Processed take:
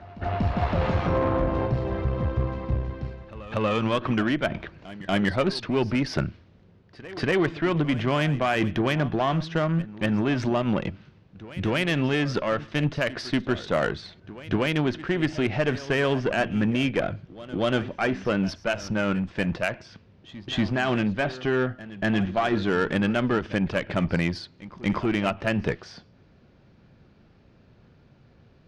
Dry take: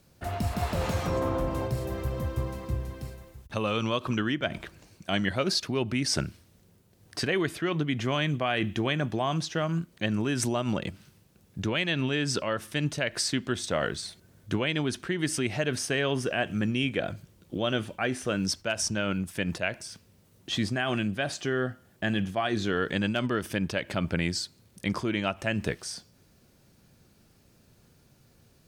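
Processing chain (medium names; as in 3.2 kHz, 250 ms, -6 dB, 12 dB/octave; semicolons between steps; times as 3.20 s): Gaussian low-pass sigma 2.4 samples; Chebyshev shaper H 5 -26 dB, 8 -23 dB, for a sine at -13.5 dBFS; reverse echo 238 ms -17 dB; trim +3.5 dB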